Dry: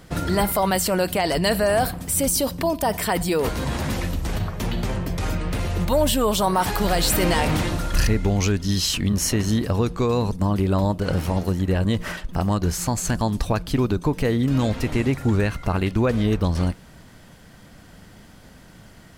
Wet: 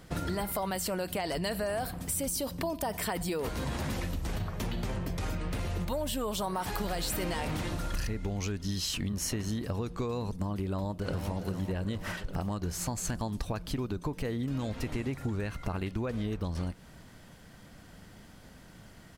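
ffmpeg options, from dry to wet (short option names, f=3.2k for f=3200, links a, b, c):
-filter_complex "[0:a]asplit=2[a][b];[b]afade=t=in:st=10.64:d=0.01,afade=t=out:st=11.31:d=0.01,aecho=0:1:400|800|1200|1600|2000|2400|2800|3200:0.375837|0.225502|0.135301|0.0811809|0.0487085|0.0292251|0.0175351|0.010521[c];[a][c]amix=inputs=2:normalize=0,acompressor=threshold=-24dB:ratio=6,volume=-5.5dB"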